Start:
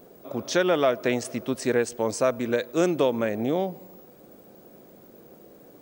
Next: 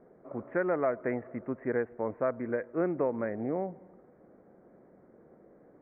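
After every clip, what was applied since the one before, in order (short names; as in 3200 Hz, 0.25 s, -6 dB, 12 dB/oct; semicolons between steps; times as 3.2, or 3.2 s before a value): steep low-pass 2100 Hz 72 dB/oct; gain -7 dB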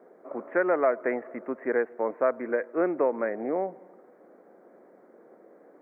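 Bessel high-pass 360 Hz, order 4; gain +6.5 dB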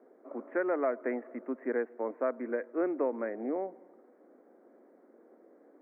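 resonant low shelf 180 Hz -11.5 dB, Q 3; gain -8 dB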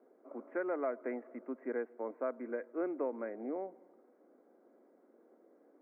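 notch 1800 Hz, Q 12; gain -5.5 dB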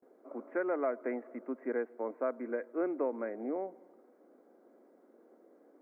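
gate with hold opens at -59 dBFS; gain +3 dB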